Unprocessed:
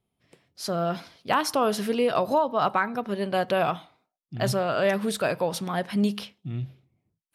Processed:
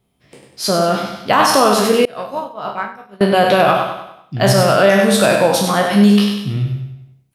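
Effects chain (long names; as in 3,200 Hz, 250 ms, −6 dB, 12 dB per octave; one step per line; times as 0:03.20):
peak hold with a decay on every bin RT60 0.54 s
double-tracking delay 15 ms −10 dB
repeating echo 98 ms, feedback 45%, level −6.5 dB
0:02.05–0:03.21: downward expander −9 dBFS
boost into a limiter +11.5 dB
level −1 dB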